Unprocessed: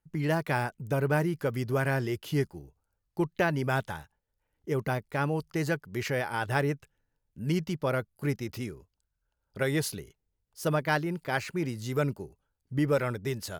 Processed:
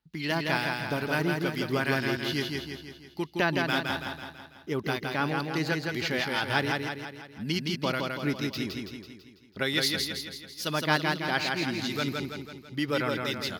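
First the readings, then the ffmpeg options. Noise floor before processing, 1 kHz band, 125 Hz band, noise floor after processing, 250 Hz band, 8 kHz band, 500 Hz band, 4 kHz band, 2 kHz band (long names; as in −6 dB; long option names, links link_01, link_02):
−82 dBFS, +2.0 dB, −3.5 dB, −53 dBFS, +1.0 dB, +2.0 dB, −1.5 dB, +12.0 dB, +4.5 dB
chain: -filter_complex "[0:a]highpass=48,equalizer=frequency=4300:width_type=o:width=1.9:gain=4.5,acrossover=split=1600[link_01][link_02];[link_01]aeval=exprs='val(0)*(1-0.5/2+0.5/2*cos(2*PI*2.3*n/s))':channel_layout=same[link_03];[link_02]aeval=exprs='val(0)*(1-0.5/2-0.5/2*cos(2*PI*2.3*n/s))':channel_layout=same[link_04];[link_03][link_04]amix=inputs=2:normalize=0,equalizer=frequency=125:width_type=o:width=1:gain=-8,equalizer=frequency=250:width_type=o:width=1:gain=4,equalizer=frequency=500:width_type=o:width=1:gain=-6,equalizer=frequency=4000:width_type=o:width=1:gain=10,equalizer=frequency=8000:width_type=o:width=1:gain=-8,asplit=2[link_05][link_06];[link_06]aecho=0:1:165|330|495|660|825|990|1155:0.668|0.354|0.188|0.0995|0.0527|0.0279|0.0148[link_07];[link_05][link_07]amix=inputs=2:normalize=0,volume=2.5dB"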